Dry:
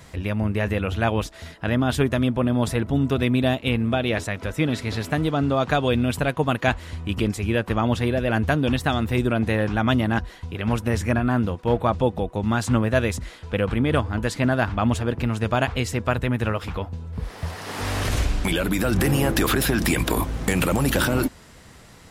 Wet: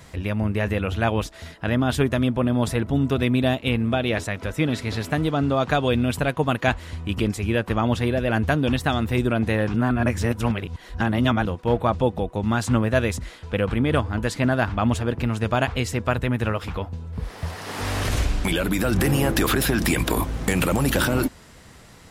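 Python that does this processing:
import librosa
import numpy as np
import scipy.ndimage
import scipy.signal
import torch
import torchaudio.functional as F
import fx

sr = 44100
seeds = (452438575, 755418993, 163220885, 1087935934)

y = fx.edit(x, sr, fx.reverse_span(start_s=9.74, length_s=1.71), tone=tone)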